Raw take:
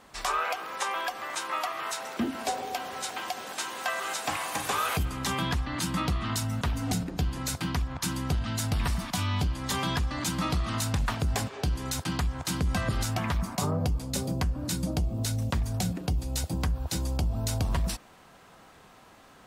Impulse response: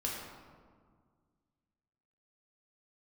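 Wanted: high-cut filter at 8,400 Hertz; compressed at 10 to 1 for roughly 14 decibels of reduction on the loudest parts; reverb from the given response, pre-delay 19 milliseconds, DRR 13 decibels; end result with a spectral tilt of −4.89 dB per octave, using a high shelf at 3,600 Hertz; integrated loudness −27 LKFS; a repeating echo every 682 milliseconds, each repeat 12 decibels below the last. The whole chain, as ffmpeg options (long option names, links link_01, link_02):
-filter_complex "[0:a]lowpass=8400,highshelf=frequency=3600:gain=-6.5,acompressor=threshold=-38dB:ratio=10,aecho=1:1:682|1364|2046:0.251|0.0628|0.0157,asplit=2[link_01][link_02];[1:a]atrim=start_sample=2205,adelay=19[link_03];[link_02][link_03]afir=irnorm=-1:irlink=0,volume=-16.5dB[link_04];[link_01][link_04]amix=inputs=2:normalize=0,volume=14.5dB"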